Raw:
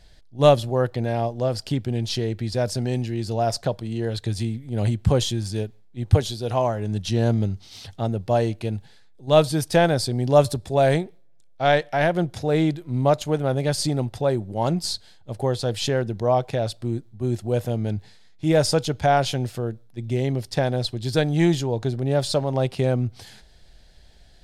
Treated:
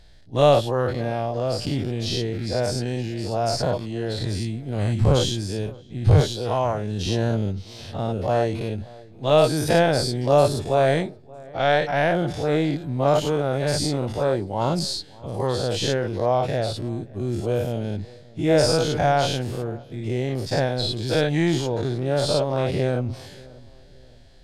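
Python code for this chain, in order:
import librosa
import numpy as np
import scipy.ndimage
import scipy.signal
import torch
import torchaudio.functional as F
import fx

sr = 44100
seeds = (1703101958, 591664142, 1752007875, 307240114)

p1 = fx.spec_dilate(x, sr, span_ms=120)
p2 = fx.high_shelf(p1, sr, hz=7600.0, db=-6.0)
p3 = p2 + fx.echo_filtered(p2, sr, ms=578, feedback_pct=41, hz=1400.0, wet_db=-22, dry=0)
y = p3 * librosa.db_to_amplitude(-4.0)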